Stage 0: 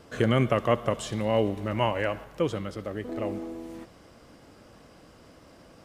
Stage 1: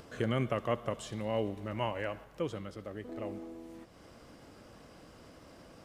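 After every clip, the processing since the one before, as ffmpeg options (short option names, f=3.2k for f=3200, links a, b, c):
-af "acompressor=mode=upward:threshold=-37dB:ratio=2.5,volume=-8.5dB"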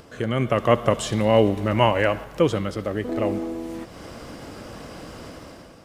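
-af "dynaudnorm=f=160:g=7:m=11dB,volume=5dB"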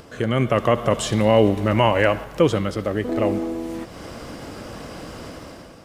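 -af "alimiter=level_in=6.5dB:limit=-1dB:release=50:level=0:latency=1,volume=-3.5dB"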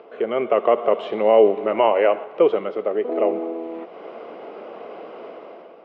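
-af "highpass=f=270:w=0.5412,highpass=f=270:w=1.3066,equalizer=f=280:t=q:w=4:g=-9,equalizer=f=420:t=q:w=4:g=8,equalizer=f=690:t=q:w=4:g=6,equalizer=f=1.7k:t=q:w=4:g=-10,lowpass=f=2.6k:w=0.5412,lowpass=f=2.6k:w=1.3066,volume=-1dB"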